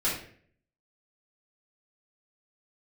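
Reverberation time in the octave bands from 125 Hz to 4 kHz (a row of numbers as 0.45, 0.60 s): 0.75, 0.65, 0.60, 0.45, 0.55, 0.40 s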